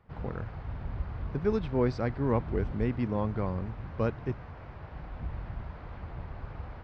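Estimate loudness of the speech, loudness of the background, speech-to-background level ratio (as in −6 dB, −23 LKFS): −32.0 LKFS, −41.0 LKFS, 9.0 dB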